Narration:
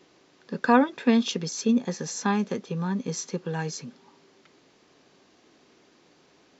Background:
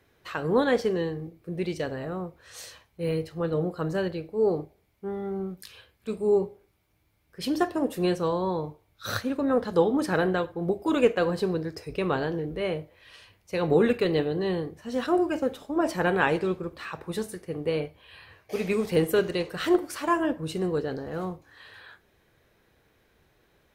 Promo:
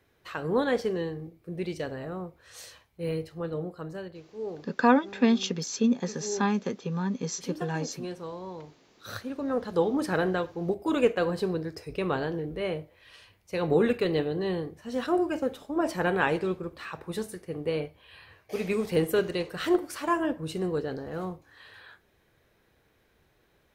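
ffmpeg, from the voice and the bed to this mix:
ffmpeg -i stem1.wav -i stem2.wav -filter_complex "[0:a]adelay=4150,volume=-1.5dB[link_01];[1:a]volume=7dB,afade=type=out:start_time=3.12:duration=0.96:silence=0.354813,afade=type=in:start_time=8.84:duration=1.2:silence=0.316228[link_02];[link_01][link_02]amix=inputs=2:normalize=0" out.wav

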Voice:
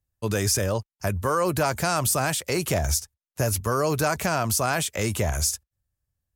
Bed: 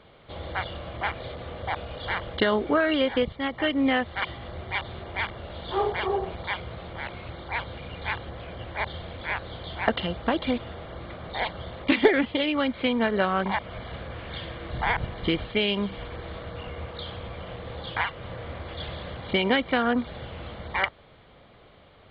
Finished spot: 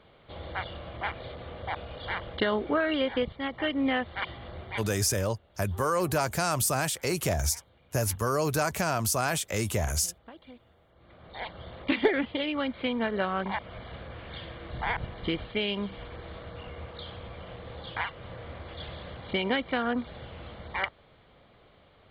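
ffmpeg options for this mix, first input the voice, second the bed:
ffmpeg -i stem1.wav -i stem2.wav -filter_complex "[0:a]adelay=4550,volume=-3.5dB[link_01];[1:a]volume=14.5dB,afade=type=out:start_time=4.58:duration=0.59:silence=0.105925,afade=type=in:start_time=10.95:duration=0.82:silence=0.11885[link_02];[link_01][link_02]amix=inputs=2:normalize=0" out.wav

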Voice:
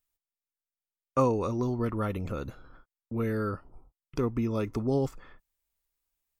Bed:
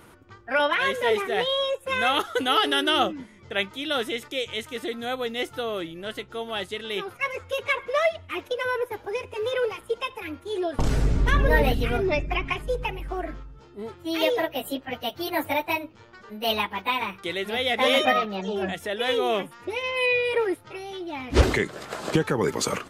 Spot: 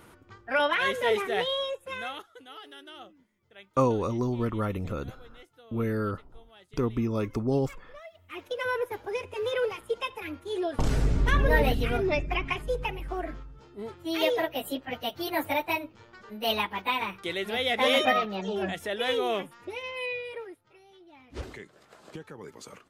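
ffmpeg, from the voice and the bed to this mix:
ffmpeg -i stem1.wav -i stem2.wav -filter_complex "[0:a]adelay=2600,volume=1dB[link_01];[1:a]volume=19.5dB,afade=type=out:start_time=1.33:duration=0.95:silence=0.0794328,afade=type=in:start_time=8.11:duration=0.58:silence=0.0794328,afade=type=out:start_time=18.99:duration=1.56:silence=0.133352[link_02];[link_01][link_02]amix=inputs=2:normalize=0" out.wav

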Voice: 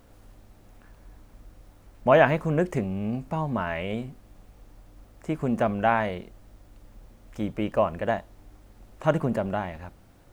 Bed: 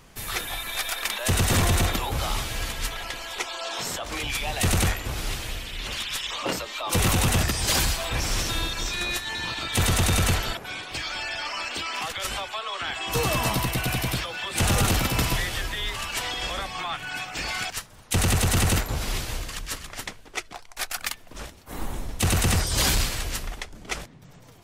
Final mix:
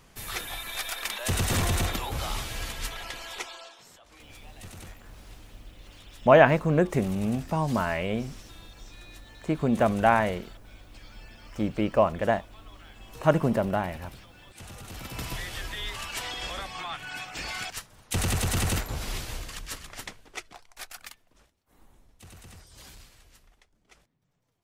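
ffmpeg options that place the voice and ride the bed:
ffmpeg -i stem1.wav -i stem2.wav -filter_complex "[0:a]adelay=4200,volume=1.5dB[link_01];[1:a]volume=13dB,afade=type=out:start_time=3.33:duration=0.43:silence=0.125893,afade=type=in:start_time=14.86:duration=0.92:silence=0.133352,afade=type=out:start_time=20.09:duration=1.37:silence=0.0794328[link_02];[link_01][link_02]amix=inputs=2:normalize=0" out.wav

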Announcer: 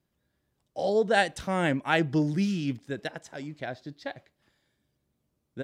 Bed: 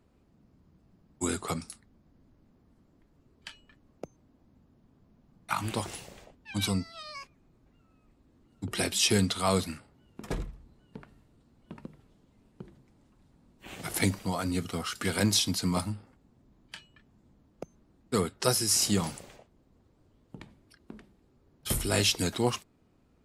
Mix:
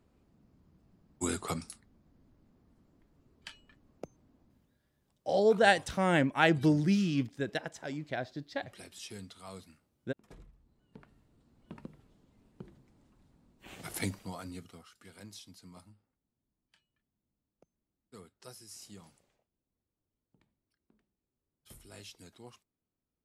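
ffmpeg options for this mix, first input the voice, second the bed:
ffmpeg -i stem1.wav -i stem2.wav -filter_complex "[0:a]adelay=4500,volume=-0.5dB[link_01];[1:a]volume=16dB,afade=type=out:start_time=4.4:duration=0.4:silence=0.11885,afade=type=in:start_time=10.36:duration=1.28:silence=0.11885,afade=type=out:start_time=13.17:duration=1.73:silence=0.0794328[link_02];[link_01][link_02]amix=inputs=2:normalize=0" out.wav

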